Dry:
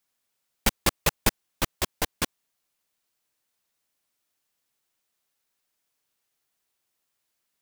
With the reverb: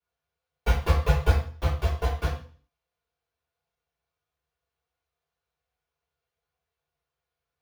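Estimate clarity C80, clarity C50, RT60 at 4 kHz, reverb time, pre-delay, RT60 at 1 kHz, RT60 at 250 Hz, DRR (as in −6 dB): 8.5 dB, 4.5 dB, 0.45 s, 0.45 s, 3 ms, 0.45 s, 0.50 s, −11.5 dB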